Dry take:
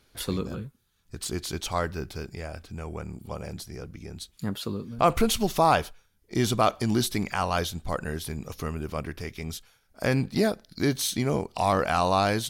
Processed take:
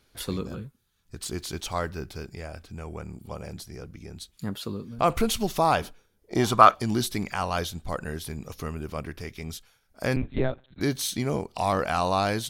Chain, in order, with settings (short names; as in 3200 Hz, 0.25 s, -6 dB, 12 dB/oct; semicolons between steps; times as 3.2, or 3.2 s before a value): 1.28–1.88 crackle 450/s -49 dBFS; 5.81–6.73 bell 200 Hz -> 1600 Hz +14 dB 1.3 oct; 10.16–10.81 monotone LPC vocoder at 8 kHz 130 Hz; gain -1.5 dB